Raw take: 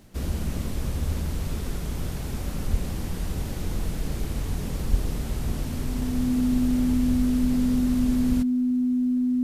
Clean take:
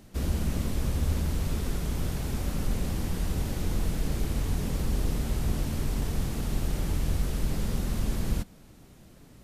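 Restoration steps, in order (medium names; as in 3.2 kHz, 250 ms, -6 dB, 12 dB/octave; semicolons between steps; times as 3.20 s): de-click; band-stop 250 Hz, Q 30; 2.70–2.82 s: high-pass 140 Hz 24 dB/octave; 4.90–5.02 s: high-pass 140 Hz 24 dB/octave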